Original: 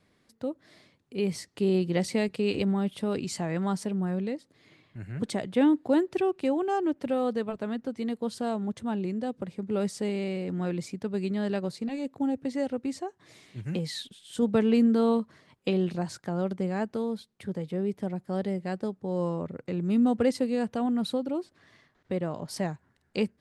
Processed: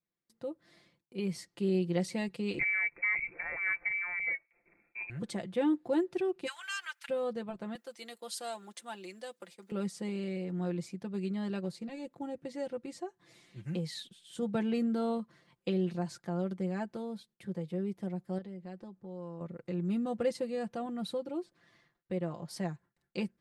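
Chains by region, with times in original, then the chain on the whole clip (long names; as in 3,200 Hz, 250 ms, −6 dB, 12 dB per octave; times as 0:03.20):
0:02.59–0:05.10: leveller curve on the samples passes 1 + voice inversion scrambler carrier 2,500 Hz
0:06.46–0:07.08: ceiling on every frequency bin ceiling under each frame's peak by 25 dB + Chebyshev high-pass filter 1,500 Hz, order 3 + notch filter 1,800 Hz, Q 14
0:07.75–0:09.72: downward expander −46 dBFS + high-pass filter 310 Hz + spectral tilt +4 dB per octave
0:18.38–0:19.41: high-frequency loss of the air 54 metres + downward compressor 2.5 to 1, threshold −39 dBFS + one half of a high-frequency compander decoder only
whole clip: noise gate with hold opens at −52 dBFS; comb filter 5.8 ms; level −8 dB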